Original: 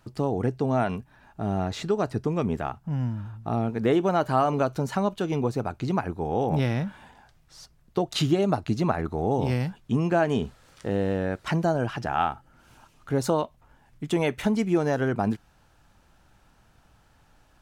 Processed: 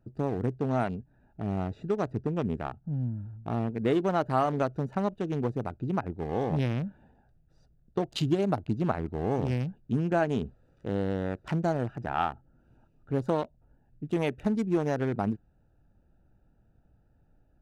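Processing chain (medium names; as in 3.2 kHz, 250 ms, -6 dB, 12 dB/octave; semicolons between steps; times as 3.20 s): local Wiener filter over 41 samples; trim -3 dB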